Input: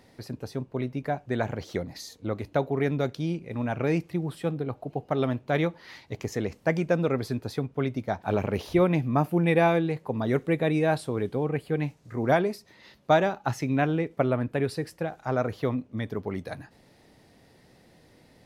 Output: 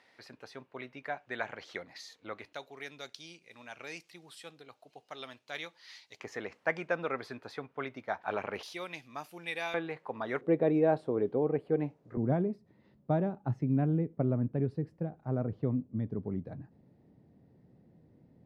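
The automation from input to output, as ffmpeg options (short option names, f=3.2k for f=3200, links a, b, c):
-af "asetnsamples=n=441:p=0,asendcmd='2.53 bandpass f 5400;6.2 bandpass f 1500;8.63 bandpass f 5200;9.74 bandpass f 1400;10.41 bandpass f 440;12.17 bandpass f 160',bandpass=f=2k:t=q:w=0.92:csg=0"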